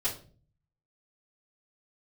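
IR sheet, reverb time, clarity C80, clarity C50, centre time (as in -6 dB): 0.45 s, 15.0 dB, 9.5 dB, 19 ms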